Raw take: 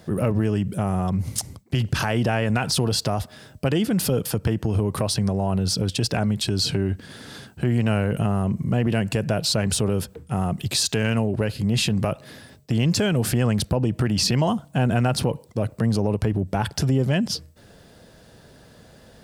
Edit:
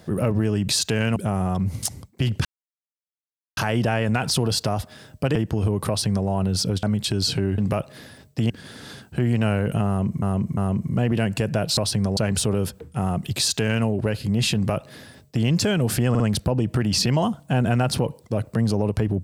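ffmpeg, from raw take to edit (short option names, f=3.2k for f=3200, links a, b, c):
-filter_complex "[0:a]asplit=14[a][b][c][d][e][f][g][h][i][j][k][l][m][n];[a]atrim=end=0.692[o];[b]atrim=start=10.728:end=11.202[p];[c]atrim=start=0.688:end=1.98,asetpts=PTS-STARTPTS,afade=t=out:st=1.288:d=0.004:c=hsin,apad=pad_dur=1.12[q];[d]atrim=start=1.98:end=3.762,asetpts=PTS-STARTPTS,afade=t=in:d=0.004:c=hsin[r];[e]atrim=start=4.468:end=5.952[s];[f]atrim=start=6.198:end=6.952[t];[g]atrim=start=11.898:end=12.822[u];[h]atrim=start=6.948:end=8.672[v];[i]atrim=start=8.318:end=8.672[w];[j]atrim=start=8.318:end=9.522[x];[k]atrim=start=4.998:end=5.402[y];[l]atrim=start=9.518:end=13.502[z];[m]atrim=start=13.448:end=13.502[aa];[n]atrim=start=13.448[ab];[o][p]acrossfade=d=0.004:c1=hsin:c2=hsin[ac];[q][r]concat=n=2:v=0:a=1[ad];[ac][ad]acrossfade=d=0.004:c1=hsin:c2=hsin[ae];[ae][s]acrossfade=d=0.004:c1=hsin:c2=hsin[af];[af][t]acrossfade=d=0.004:c1=hsin:c2=hsin[ag];[ag][u]acrossfade=d=0.004:c1=hsin:c2=hsin[ah];[ah][v]acrossfade=d=0.004:c1=hsin:c2=hsin[ai];[ai][w]acrossfade=d=0.004:c1=hsin:c2=hsin[aj];[aj][x]acrossfade=d=0.004:c1=hsin:c2=hsin[ak];[ak][y]acrossfade=d=0.004:c1=hsin:c2=hsin[al];[al][z]acrossfade=d=0.004:c1=hsin:c2=hsin[am];[am][aa]acrossfade=d=0.004:c1=hsin:c2=hsin[an];[an][ab]acrossfade=d=0.004:c1=hsin:c2=hsin"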